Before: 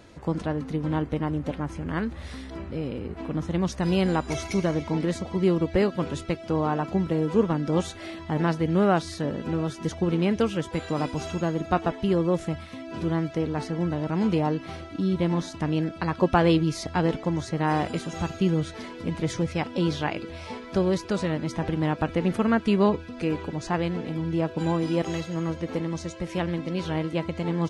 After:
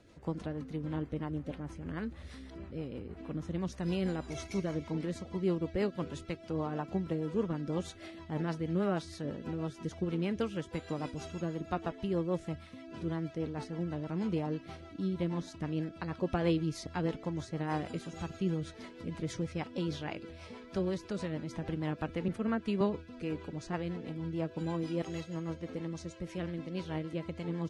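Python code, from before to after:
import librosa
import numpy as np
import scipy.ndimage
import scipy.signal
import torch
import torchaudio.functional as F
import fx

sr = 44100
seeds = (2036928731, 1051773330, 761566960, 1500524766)

y = fx.rotary(x, sr, hz=6.3)
y = fx.band_widen(y, sr, depth_pct=70, at=(22.28, 22.81))
y = y * librosa.db_to_amplitude(-8.0)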